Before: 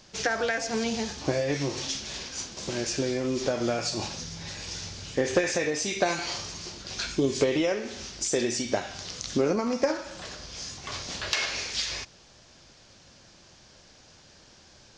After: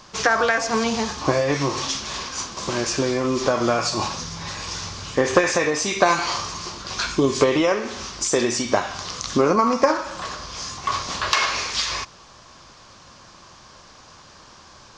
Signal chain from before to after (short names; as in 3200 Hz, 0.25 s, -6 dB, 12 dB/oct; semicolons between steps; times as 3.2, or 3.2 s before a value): bell 1100 Hz +14.5 dB 0.53 oct; gain +5.5 dB